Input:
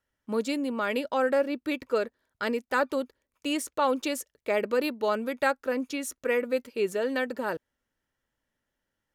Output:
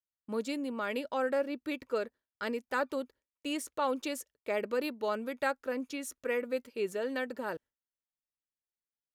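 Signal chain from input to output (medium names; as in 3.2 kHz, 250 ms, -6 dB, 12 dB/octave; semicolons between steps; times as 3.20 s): gate with hold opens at -47 dBFS; trim -6 dB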